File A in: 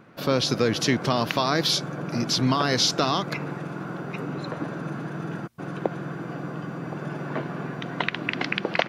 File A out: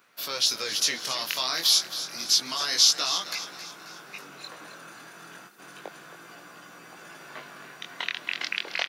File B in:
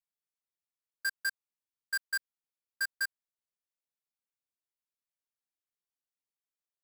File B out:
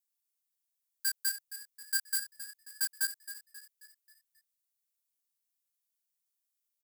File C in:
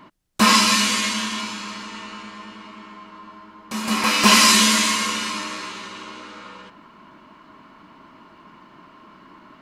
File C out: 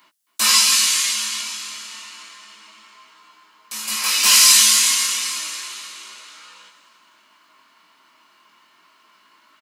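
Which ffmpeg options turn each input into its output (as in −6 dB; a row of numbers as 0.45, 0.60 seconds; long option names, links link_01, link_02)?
-filter_complex "[0:a]aderivative,flanger=delay=16.5:depth=7.3:speed=0.3,acontrast=78,asplit=2[link_01][link_02];[link_02]asplit=5[link_03][link_04][link_05][link_06][link_07];[link_03]adelay=268,afreqshift=35,volume=-12.5dB[link_08];[link_04]adelay=536,afreqshift=70,volume=-18.9dB[link_09];[link_05]adelay=804,afreqshift=105,volume=-25.3dB[link_10];[link_06]adelay=1072,afreqshift=140,volume=-31.6dB[link_11];[link_07]adelay=1340,afreqshift=175,volume=-38dB[link_12];[link_08][link_09][link_10][link_11][link_12]amix=inputs=5:normalize=0[link_13];[link_01][link_13]amix=inputs=2:normalize=0,volume=3.5dB"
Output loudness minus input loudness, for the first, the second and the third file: +2.5, +1.5, +3.0 LU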